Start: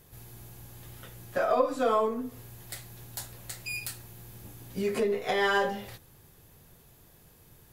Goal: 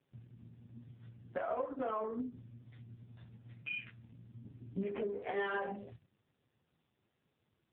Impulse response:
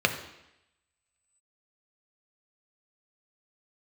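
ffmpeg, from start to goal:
-filter_complex "[0:a]afwtdn=0.0126,asplit=3[a][b][c];[a]afade=t=out:st=1.44:d=0.02[d];[b]lowshelf=f=180:g=-2.5,afade=t=in:st=1.44:d=0.02,afade=t=out:st=2.15:d=0.02[e];[c]afade=t=in:st=2.15:d=0.02[f];[d][e][f]amix=inputs=3:normalize=0,acompressor=threshold=-36dB:ratio=3,flanger=delay=7.1:depth=5.3:regen=67:speed=1.1:shape=sinusoidal,volume=4.5dB" -ar 8000 -c:a libopencore_amrnb -b:a 5900

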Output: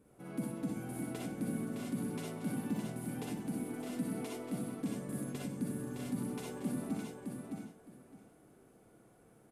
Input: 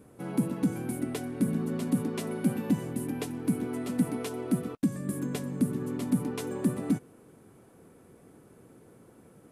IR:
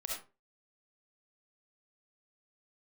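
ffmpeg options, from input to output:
-filter_complex "[0:a]aecho=1:1:613|1226|1839:0.562|0.107|0.0203[a];[1:a]atrim=start_sample=2205,asetrate=48510,aresample=44100[b];[a][b]afir=irnorm=-1:irlink=0,volume=-7dB"

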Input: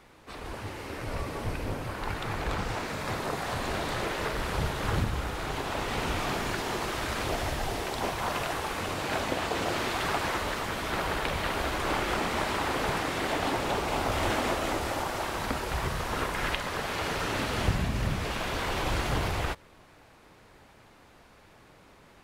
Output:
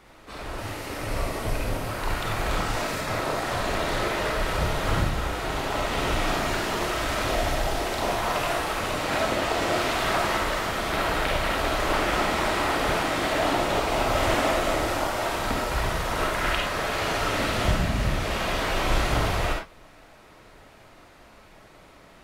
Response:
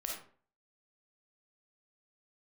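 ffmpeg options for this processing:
-filter_complex "[0:a]asettb=1/sr,asplit=3[a][b][c];[a]atrim=end=0.584[d];[b]atrim=start=0.58:end=3.01,asetpts=PTS-STARTPTS,afade=t=in:d=0.004:c=qsin,afade=t=out:st=2.426:d=0.004:c=qsin,highshelf=f=6k:g=7[e];[c]atrim=start=3.006[f];[d][e]acrossfade=d=0.004:c1=hsin:c2=qsin[g];[g][f]acrossfade=d=0.004:c1=qsin:c2=hsin[h];[1:a]atrim=start_sample=2205,afade=t=out:st=0.17:d=0.01,atrim=end_sample=7938[i];[h][i]afir=irnorm=-1:irlink=0,volume=4.5dB"

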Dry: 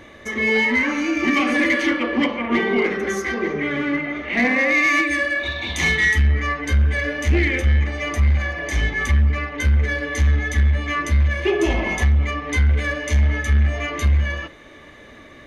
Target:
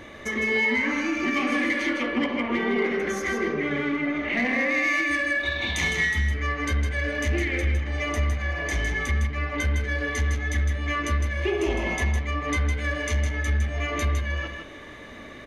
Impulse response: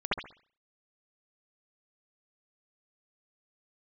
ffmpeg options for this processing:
-filter_complex "[0:a]acompressor=threshold=-27dB:ratio=2.5,aecho=1:1:158:0.501,asplit=2[a][b];[1:a]atrim=start_sample=2205[c];[b][c]afir=irnorm=-1:irlink=0,volume=-22dB[d];[a][d]amix=inputs=2:normalize=0"

